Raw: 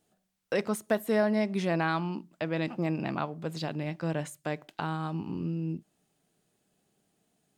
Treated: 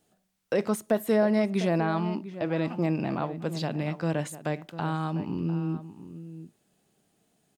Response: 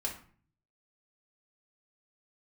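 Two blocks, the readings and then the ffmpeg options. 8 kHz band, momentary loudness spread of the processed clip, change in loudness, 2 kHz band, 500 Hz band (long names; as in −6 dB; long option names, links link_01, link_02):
+2.5 dB, 12 LU, +3.0 dB, −1.0 dB, +3.0 dB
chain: -filter_complex "[0:a]acrossover=split=890[link_01][link_02];[link_02]alimiter=level_in=7.5dB:limit=-24dB:level=0:latency=1:release=19,volume=-7.5dB[link_03];[link_01][link_03]amix=inputs=2:normalize=0,asplit=2[link_04][link_05];[link_05]adelay=699.7,volume=-13dB,highshelf=frequency=4000:gain=-15.7[link_06];[link_04][link_06]amix=inputs=2:normalize=0,volume=3.5dB"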